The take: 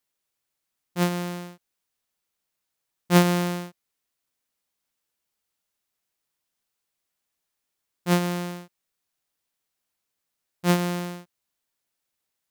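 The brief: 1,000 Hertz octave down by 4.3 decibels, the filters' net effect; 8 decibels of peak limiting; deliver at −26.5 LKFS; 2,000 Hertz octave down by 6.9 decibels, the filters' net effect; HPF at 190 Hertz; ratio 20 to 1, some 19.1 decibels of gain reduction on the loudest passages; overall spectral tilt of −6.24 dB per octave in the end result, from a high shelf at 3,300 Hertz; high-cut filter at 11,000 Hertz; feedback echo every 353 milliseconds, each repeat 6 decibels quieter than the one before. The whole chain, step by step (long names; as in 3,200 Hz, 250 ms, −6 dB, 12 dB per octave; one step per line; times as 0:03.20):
high-pass filter 190 Hz
low-pass filter 11,000 Hz
parametric band 1,000 Hz −4 dB
parametric band 2,000 Hz −5.5 dB
high-shelf EQ 3,300 Hz −6.5 dB
downward compressor 20 to 1, threshold −32 dBFS
brickwall limiter −28 dBFS
repeating echo 353 ms, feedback 50%, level −6 dB
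level +16.5 dB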